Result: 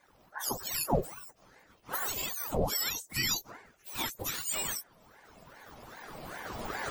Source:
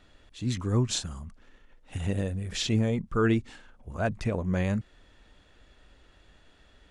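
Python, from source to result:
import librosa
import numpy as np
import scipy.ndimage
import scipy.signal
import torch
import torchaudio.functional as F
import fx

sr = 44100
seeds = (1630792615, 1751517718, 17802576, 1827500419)

y = fx.octave_mirror(x, sr, pivot_hz=1200.0)
y = fx.recorder_agc(y, sr, target_db=-20.5, rise_db_per_s=13.0, max_gain_db=30)
y = fx.ring_lfo(y, sr, carrier_hz=760.0, swing_pct=75, hz=2.5)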